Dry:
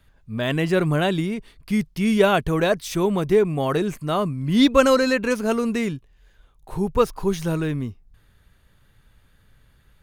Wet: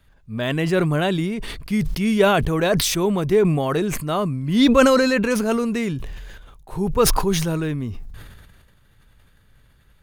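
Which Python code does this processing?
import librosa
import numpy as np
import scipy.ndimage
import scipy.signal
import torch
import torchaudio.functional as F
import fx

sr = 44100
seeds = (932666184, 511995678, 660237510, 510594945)

y = fx.sustainer(x, sr, db_per_s=33.0)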